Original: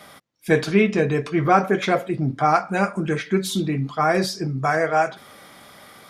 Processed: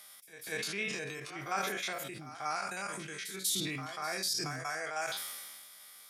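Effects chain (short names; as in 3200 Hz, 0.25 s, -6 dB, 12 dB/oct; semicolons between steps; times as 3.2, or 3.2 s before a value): stepped spectrum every 50 ms; pre-emphasis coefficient 0.97; reverse echo 0.19 s -14.5 dB; sustainer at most 29 dB/s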